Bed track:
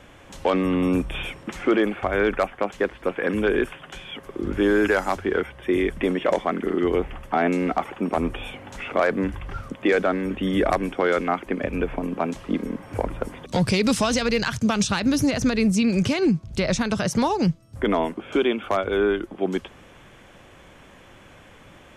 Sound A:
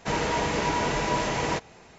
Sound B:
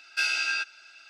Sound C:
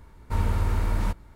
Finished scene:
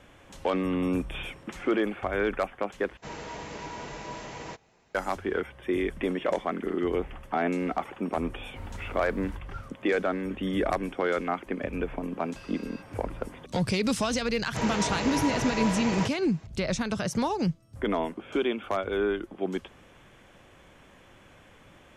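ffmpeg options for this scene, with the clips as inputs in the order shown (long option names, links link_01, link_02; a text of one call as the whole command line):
ffmpeg -i bed.wav -i cue0.wav -i cue1.wav -i cue2.wav -filter_complex "[1:a]asplit=2[link_01][link_02];[0:a]volume=-6dB[link_03];[2:a]acompressor=threshold=-33dB:ratio=6:attack=3.2:release=140:knee=1:detection=peak[link_04];[link_03]asplit=2[link_05][link_06];[link_05]atrim=end=2.974[link_07];[link_01]atrim=end=1.98,asetpts=PTS-STARTPTS,volume=-13dB[link_08];[link_06]atrim=start=4.946[link_09];[3:a]atrim=end=1.35,asetpts=PTS-STARTPTS,volume=-16.5dB,afade=type=in:duration=0.004:curve=hsin,afade=type=out:start_time=1.346:duration=0.004:curve=hsin,adelay=8250[link_10];[link_04]atrim=end=1.09,asetpts=PTS-STARTPTS,volume=-15.5dB,afade=type=in:duration=0.004:curve=hsin,afade=type=out:start_time=1.086:duration=0.004:curve=hsin,adelay=12190[link_11];[link_02]atrim=end=1.98,asetpts=PTS-STARTPTS,volume=-4.5dB,afade=type=in:duration=0.004:curve=hsin,afade=type=out:start_time=1.976:duration=0.004:curve=hsin,adelay=14490[link_12];[link_07][link_08]acrossfade=duration=0.004:curve1=hsin:curve2=hsin[link_13];[link_13][link_09]acrossfade=duration=0.004:curve1=hsin:curve2=hsin[link_14];[link_14][link_10][link_11][link_12]amix=inputs=4:normalize=0" out.wav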